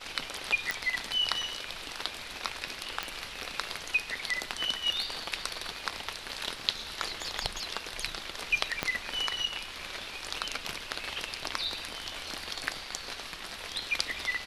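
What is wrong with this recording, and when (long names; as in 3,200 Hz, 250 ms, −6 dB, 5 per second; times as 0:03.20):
0:00.71: click −14 dBFS
0:03.03: click −15 dBFS
0:08.83: click −12 dBFS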